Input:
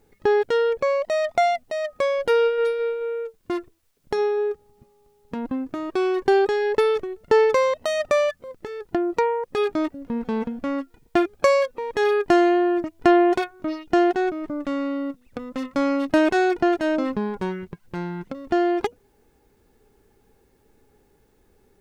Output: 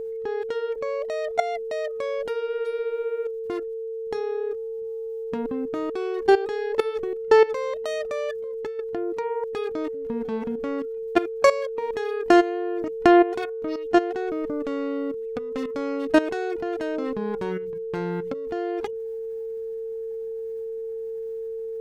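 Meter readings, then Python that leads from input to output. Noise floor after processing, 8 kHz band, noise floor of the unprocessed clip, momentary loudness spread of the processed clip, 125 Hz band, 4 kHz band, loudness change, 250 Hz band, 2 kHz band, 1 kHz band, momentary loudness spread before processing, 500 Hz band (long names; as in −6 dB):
−32 dBFS, can't be measured, −62 dBFS, 13 LU, −2.5 dB, −4.0 dB, −3.5 dB, −3.0 dB, −3.5 dB, −3.0 dB, 13 LU, −2.0 dB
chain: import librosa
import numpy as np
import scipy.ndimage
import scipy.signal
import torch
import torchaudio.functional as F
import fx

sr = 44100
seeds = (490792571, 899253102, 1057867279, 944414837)

y = fx.hum_notches(x, sr, base_hz=60, count=3)
y = fx.level_steps(y, sr, step_db=16)
y = y + 10.0 ** (-32.0 / 20.0) * np.sin(2.0 * np.pi * 450.0 * np.arange(len(y)) / sr)
y = y * 10.0 ** (3.0 / 20.0)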